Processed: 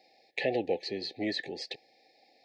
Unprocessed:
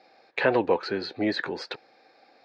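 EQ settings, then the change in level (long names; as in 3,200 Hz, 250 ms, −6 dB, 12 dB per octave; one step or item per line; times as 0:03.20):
linear-phase brick-wall band-stop 850–1,700 Hz
high-shelf EQ 4,200 Hz +11.5 dB
−7.0 dB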